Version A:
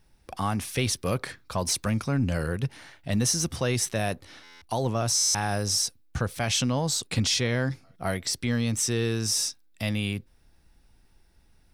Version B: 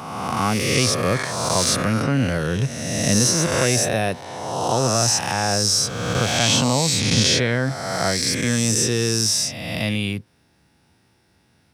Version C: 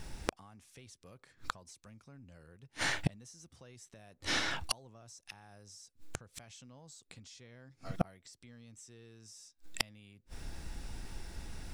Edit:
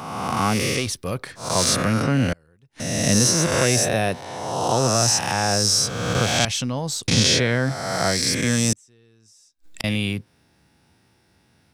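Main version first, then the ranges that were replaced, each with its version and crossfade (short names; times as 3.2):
B
0.76–1.47 from A, crossfade 0.24 s
2.33–2.8 from C
6.45–7.08 from A
8.73–9.84 from C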